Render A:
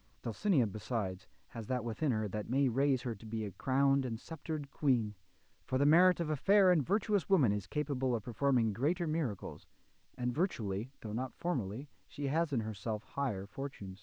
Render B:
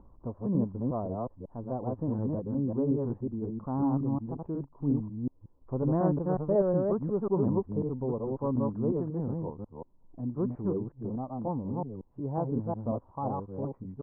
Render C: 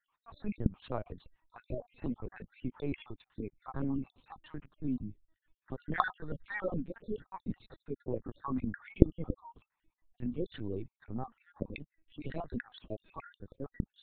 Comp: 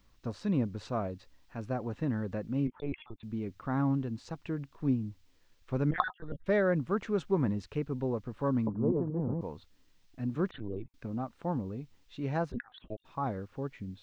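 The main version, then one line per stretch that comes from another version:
A
0:02.67–0:03.23: punch in from C
0:05.91–0:06.46: punch in from C
0:08.67–0:09.41: punch in from B
0:10.51–0:10.94: punch in from C
0:12.52–0:13.05: punch in from C

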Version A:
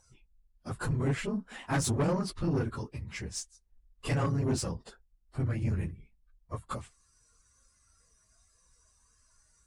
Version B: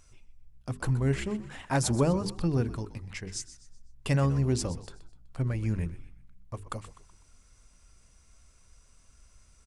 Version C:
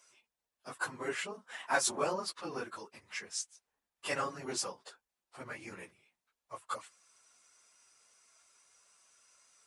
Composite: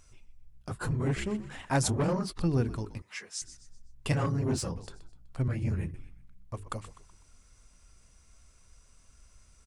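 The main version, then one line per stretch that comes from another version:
B
0:00.69–0:01.16: punch in from A
0:01.89–0:02.38: punch in from A
0:03.02–0:03.42: punch in from C
0:04.12–0:04.76: punch in from A
0:05.48–0:05.94: punch in from A

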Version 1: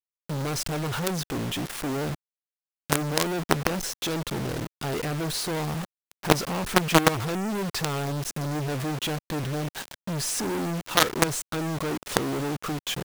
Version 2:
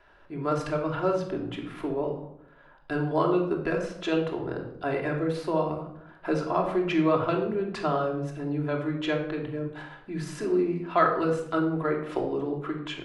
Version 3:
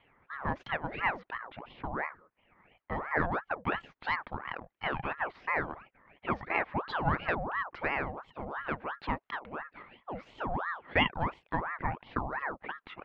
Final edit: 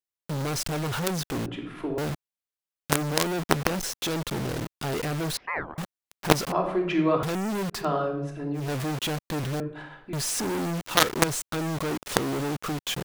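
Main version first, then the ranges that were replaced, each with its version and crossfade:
1
0:01.46–0:01.98: punch in from 2
0:05.37–0:05.78: punch in from 3
0:06.52–0:07.23: punch in from 2
0:07.78–0:08.61: punch in from 2, crossfade 0.16 s
0:09.60–0:10.13: punch in from 2

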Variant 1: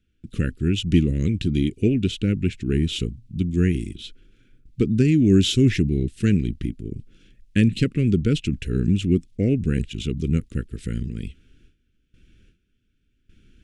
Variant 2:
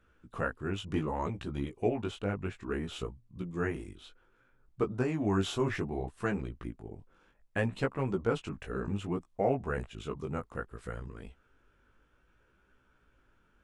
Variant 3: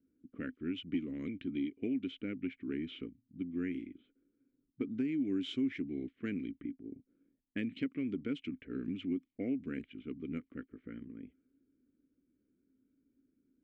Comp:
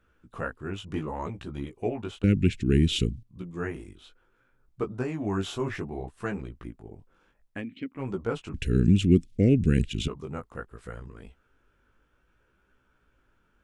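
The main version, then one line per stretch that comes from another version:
2
0:02.24–0:03.23: punch in from 1
0:07.57–0:07.99: punch in from 3, crossfade 0.16 s
0:08.54–0:10.08: punch in from 1

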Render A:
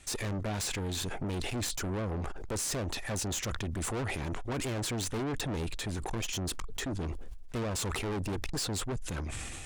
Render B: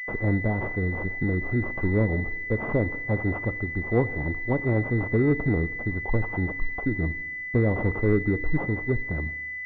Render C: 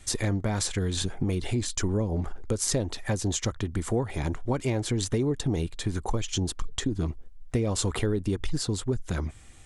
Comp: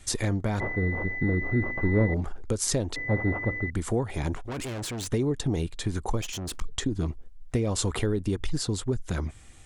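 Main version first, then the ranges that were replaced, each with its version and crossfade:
C
0:00.60–0:02.14: punch in from B
0:02.96–0:03.70: punch in from B
0:04.35–0:05.07: punch in from A
0:06.21–0:06.61: punch in from A

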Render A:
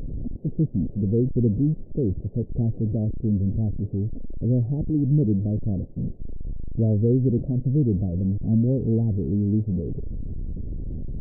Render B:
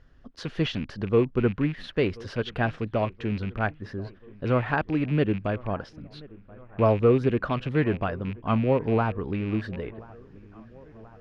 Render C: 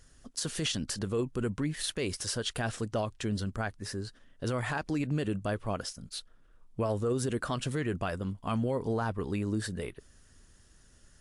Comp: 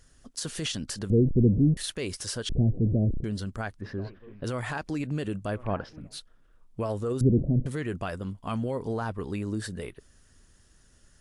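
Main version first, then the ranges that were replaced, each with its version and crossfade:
C
0:01.10–0:01.77: punch in from A
0:02.49–0:03.24: punch in from A
0:03.81–0:04.44: punch in from B
0:05.58–0:06.08: punch in from B, crossfade 0.24 s
0:07.21–0:07.66: punch in from A

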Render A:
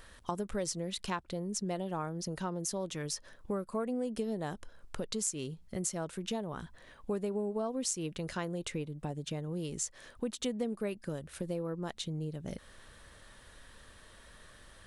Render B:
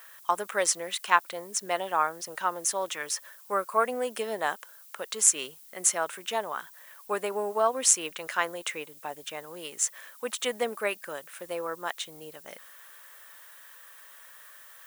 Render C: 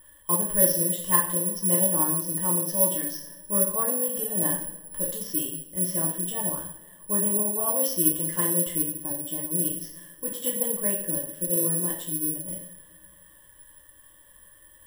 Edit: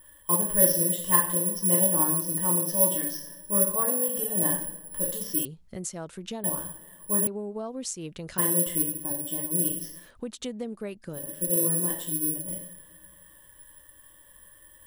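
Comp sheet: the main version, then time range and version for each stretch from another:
C
0:05.45–0:06.44: punch in from A
0:07.27–0:08.38: punch in from A
0:10.03–0:11.21: punch in from A, crossfade 0.16 s
not used: B

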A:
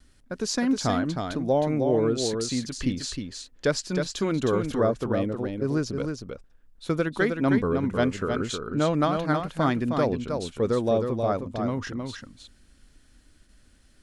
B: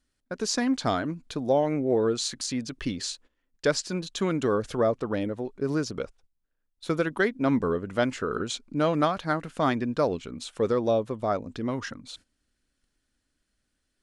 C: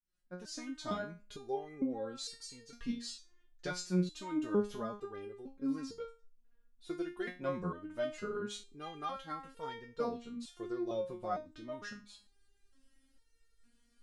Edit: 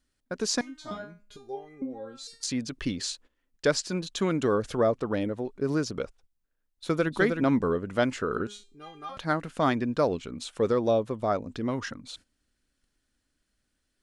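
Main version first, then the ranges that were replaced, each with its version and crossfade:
B
0:00.61–0:02.43: punch in from C
0:07.03–0:07.44: punch in from A
0:08.47–0:09.17: punch in from C

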